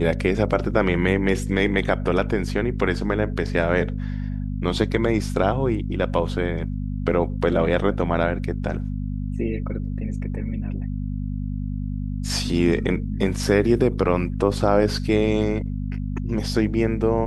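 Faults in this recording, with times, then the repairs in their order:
hum 50 Hz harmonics 5 -27 dBFS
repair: de-hum 50 Hz, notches 5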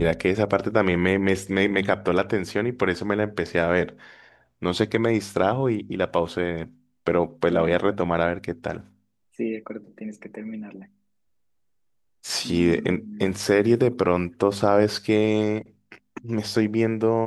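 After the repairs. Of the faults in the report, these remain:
nothing left

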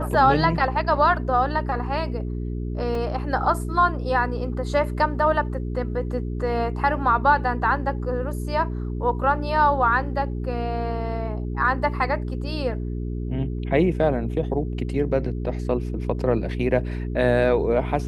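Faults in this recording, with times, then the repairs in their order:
hum 60 Hz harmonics 7 -28 dBFS
2.95 s: dropout 2.4 ms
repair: de-hum 60 Hz, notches 7; interpolate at 2.95 s, 2.4 ms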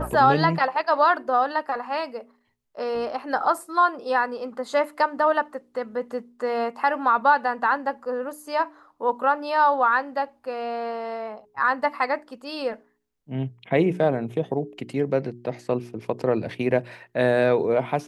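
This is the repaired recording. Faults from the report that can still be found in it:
nothing left

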